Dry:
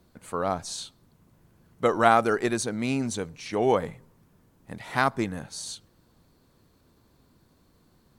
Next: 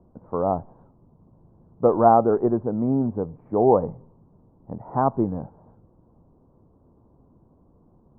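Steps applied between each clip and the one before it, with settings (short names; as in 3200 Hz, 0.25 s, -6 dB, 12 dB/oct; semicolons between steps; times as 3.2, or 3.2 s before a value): steep low-pass 1000 Hz 36 dB/oct; gain +5.5 dB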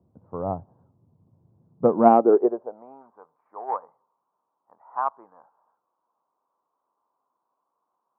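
added harmonics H 3 -32 dB, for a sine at -4 dBFS; high-pass sweep 100 Hz -> 1100 Hz, 1.55–3.03; upward expander 1.5:1, over -29 dBFS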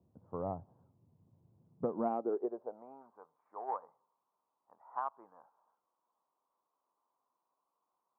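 compressor 4:1, threshold -26 dBFS, peak gain reduction 14 dB; gain -7 dB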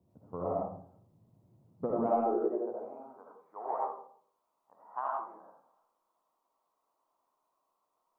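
reverb RT60 0.55 s, pre-delay 35 ms, DRR -3.5 dB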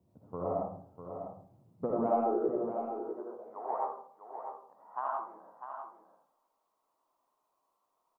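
echo 0.649 s -8.5 dB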